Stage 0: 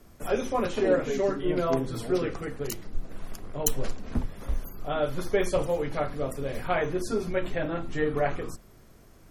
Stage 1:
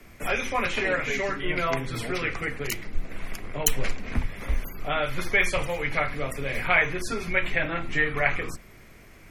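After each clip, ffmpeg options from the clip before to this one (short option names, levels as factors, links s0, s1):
-filter_complex "[0:a]equalizer=f=2200:w=1.9:g=14.5,acrossover=split=150|760|2000[s0][s1][s2][s3];[s1]acompressor=threshold=0.0158:ratio=6[s4];[s0][s4][s2][s3]amix=inputs=4:normalize=0,volume=1.41"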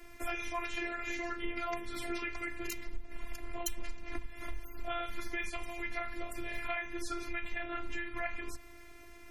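-af "acompressor=threshold=0.0251:ratio=4,afftfilt=real='hypot(re,im)*cos(PI*b)':imag='0':win_size=512:overlap=0.75"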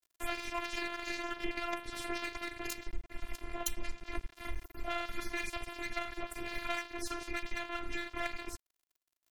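-af "aeval=exprs='sgn(val(0))*max(abs(val(0))-0.0106,0)':c=same,volume=1.41"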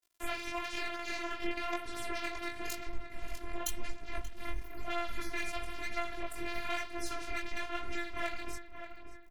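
-filter_complex "[0:a]flanger=delay=17.5:depth=5.7:speed=1,asplit=2[s0][s1];[s1]adelay=582,lowpass=f=2400:p=1,volume=0.335,asplit=2[s2][s3];[s3]adelay=582,lowpass=f=2400:p=1,volume=0.52,asplit=2[s4][s5];[s5]adelay=582,lowpass=f=2400:p=1,volume=0.52,asplit=2[s6][s7];[s7]adelay=582,lowpass=f=2400:p=1,volume=0.52,asplit=2[s8][s9];[s9]adelay=582,lowpass=f=2400:p=1,volume=0.52,asplit=2[s10][s11];[s11]adelay=582,lowpass=f=2400:p=1,volume=0.52[s12];[s0][s2][s4][s6][s8][s10][s12]amix=inputs=7:normalize=0,volume=1.41"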